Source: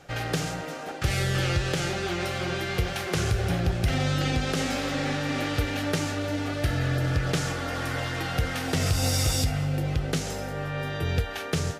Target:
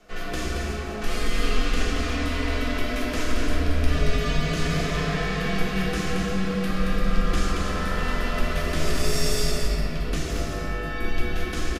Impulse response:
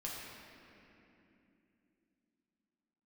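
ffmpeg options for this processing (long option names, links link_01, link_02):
-filter_complex "[0:a]afreqshift=-100,aecho=1:1:226:0.562[link_01];[1:a]atrim=start_sample=2205[link_02];[link_01][link_02]afir=irnorm=-1:irlink=0"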